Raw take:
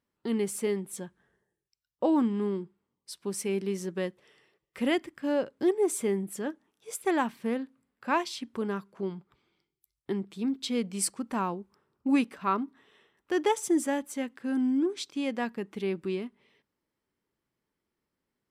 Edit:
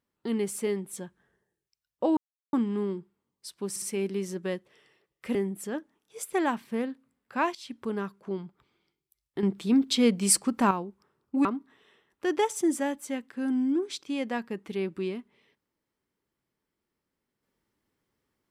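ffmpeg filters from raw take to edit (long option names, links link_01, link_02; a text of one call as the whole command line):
ffmpeg -i in.wav -filter_complex "[0:a]asplit=9[link_01][link_02][link_03][link_04][link_05][link_06][link_07][link_08][link_09];[link_01]atrim=end=2.17,asetpts=PTS-STARTPTS,afade=type=out:start_time=2.166:duration=0.004:curve=hsin,apad=pad_dur=0.36[link_10];[link_02]atrim=start=2.17:end=3.402,asetpts=PTS-STARTPTS,afade=type=in:duration=0.004:curve=hsin[link_11];[link_03]atrim=start=3.338:end=3.402[link_12];[link_04]atrim=start=3.338:end=4.872[link_13];[link_05]atrim=start=6.068:end=8.27,asetpts=PTS-STARTPTS,afade=type=out:start_time=2.198:duration=0.004:curve=hsin:silence=0.112202[link_14];[link_06]atrim=start=8.27:end=10.152,asetpts=PTS-STARTPTS,afade=type=in:duration=0.26:curve=qsin:silence=0.112202[link_15];[link_07]atrim=start=10.148:end=11.432,asetpts=PTS-STARTPTS,volume=7.5dB[link_16];[link_08]atrim=start=11.428:end=12.172[link_17];[link_09]atrim=start=12.518[link_18];[link_10][link_11]concat=n=2:v=0:a=1[link_19];[link_19][link_12]acrossfade=duration=0.004:curve1=hsin:curve2=hsin[link_20];[link_20][link_13]acrossfade=duration=0.004:curve1=hsin:curve2=hsin[link_21];[link_14][link_15]concat=n=2:v=0:a=1[link_22];[link_21][link_22]acrossfade=duration=0.004:curve1=hsin:curve2=hsin[link_23];[link_23][link_16]acrossfade=duration=0.004:curve1=hsin:curve2=hsin[link_24];[link_24][link_17]acrossfade=duration=0.004:curve1=hsin:curve2=hsin[link_25];[link_25][link_18]acrossfade=duration=0.004:curve1=hsin:curve2=hsin" out.wav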